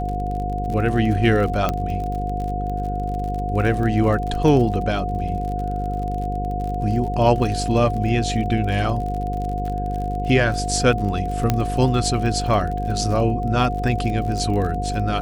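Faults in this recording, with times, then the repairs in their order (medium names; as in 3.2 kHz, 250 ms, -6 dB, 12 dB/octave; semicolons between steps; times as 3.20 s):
buzz 50 Hz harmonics 10 -26 dBFS
crackle 44 per s -28 dBFS
whine 720 Hz -26 dBFS
1.69 s: pop -8 dBFS
11.50 s: pop -5 dBFS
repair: de-click; de-hum 50 Hz, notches 10; band-stop 720 Hz, Q 30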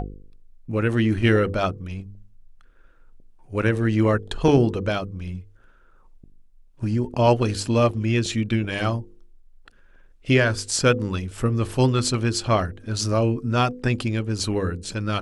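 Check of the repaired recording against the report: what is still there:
nothing left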